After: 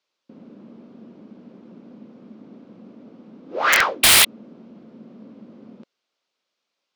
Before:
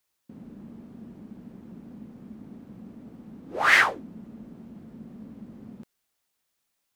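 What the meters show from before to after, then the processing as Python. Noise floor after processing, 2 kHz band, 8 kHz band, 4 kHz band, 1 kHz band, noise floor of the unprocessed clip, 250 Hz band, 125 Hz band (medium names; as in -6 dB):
-81 dBFS, +3.0 dB, +22.5 dB, +15.5 dB, +4.5 dB, -78 dBFS, +1.5 dB, +2.0 dB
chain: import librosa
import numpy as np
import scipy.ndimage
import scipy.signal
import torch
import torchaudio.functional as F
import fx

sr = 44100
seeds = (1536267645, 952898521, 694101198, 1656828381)

y = fx.spec_paint(x, sr, seeds[0], shape='noise', start_s=4.03, length_s=0.22, low_hz=1900.0, high_hz=4200.0, level_db=-14.0)
y = fx.cabinet(y, sr, low_hz=260.0, low_slope=12, high_hz=5300.0, hz=(540.0, 810.0, 1800.0), db=(4, -4, -6))
y = (np.mod(10.0 ** (11.0 / 20.0) * y + 1.0, 2.0) - 1.0) / 10.0 ** (11.0 / 20.0)
y = y * librosa.db_to_amplitude(4.5)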